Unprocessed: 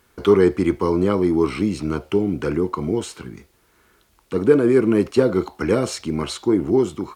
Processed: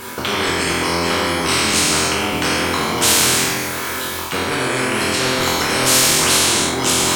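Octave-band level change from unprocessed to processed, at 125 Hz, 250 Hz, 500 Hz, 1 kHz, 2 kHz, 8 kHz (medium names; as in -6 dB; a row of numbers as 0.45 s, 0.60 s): +0.5 dB, -3.5 dB, -4.0 dB, +11.0 dB, +16.0 dB, +23.5 dB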